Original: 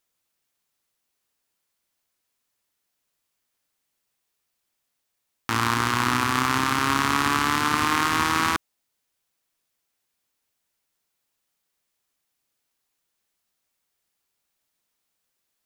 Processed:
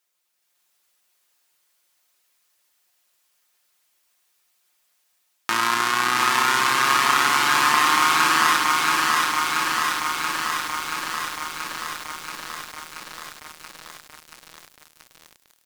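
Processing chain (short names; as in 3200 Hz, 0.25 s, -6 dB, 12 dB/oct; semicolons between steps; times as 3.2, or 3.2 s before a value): low shelf 400 Hz -8.5 dB; comb 5.6 ms, depth 61%; feedback echo 82 ms, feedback 28%, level -19 dB; AGC gain up to 7 dB; thinning echo 0.719 s, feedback 43%, high-pass 970 Hz, level -8.5 dB; in parallel at -2 dB: compressor 4:1, threshold -25 dBFS, peak gain reduction 10 dB; on the sum: HPF 270 Hz 6 dB/oct; lo-fi delay 0.68 s, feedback 80%, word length 6-bit, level -3 dB; gain -3.5 dB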